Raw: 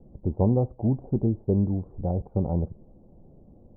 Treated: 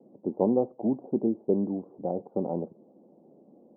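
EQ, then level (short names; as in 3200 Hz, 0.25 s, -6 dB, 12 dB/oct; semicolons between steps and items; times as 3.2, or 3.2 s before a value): HPF 230 Hz 24 dB/oct; LPF 1100 Hz 12 dB/oct; +2.0 dB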